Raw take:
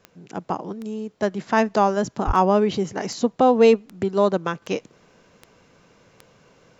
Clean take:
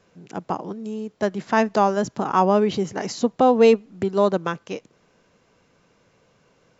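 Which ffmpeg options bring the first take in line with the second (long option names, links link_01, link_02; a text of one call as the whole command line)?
ffmpeg -i in.wav -filter_complex "[0:a]adeclick=threshold=4,asplit=3[link_01][link_02][link_03];[link_01]afade=type=out:start_time=2.26:duration=0.02[link_04];[link_02]highpass=frequency=140:width=0.5412,highpass=frequency=140:width=1.3066,afade=type=in:start_time=2.26:duration=0.02,afade=type=out:start_time=2.38:duration=0.02[link_05];[link_03]afade=type=in:start_time=2.38:duration=0.02[link_06];[link_04][link_05][link_06]amix=inputs=3:normalize=0,asetnsamples=nb_out_samples=441:pad=0,asendcmd='4.62 volume volume -5.5dB',volume=0dB" out.wav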